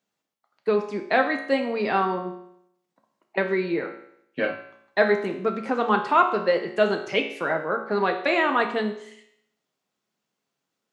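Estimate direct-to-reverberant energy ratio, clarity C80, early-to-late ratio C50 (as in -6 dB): 4.0 dB, 11.5 dB, 8.5 dB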